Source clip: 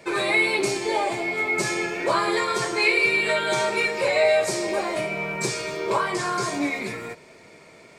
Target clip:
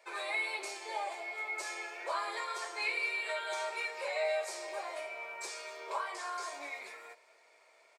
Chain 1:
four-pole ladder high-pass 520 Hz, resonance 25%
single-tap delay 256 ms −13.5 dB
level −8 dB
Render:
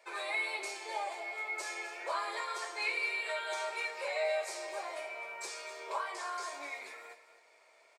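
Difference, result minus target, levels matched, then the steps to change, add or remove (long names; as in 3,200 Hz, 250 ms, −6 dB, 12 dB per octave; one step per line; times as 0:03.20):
echo-to-direct +9.5 dB
change: single-tap delay 256 ms −23 dB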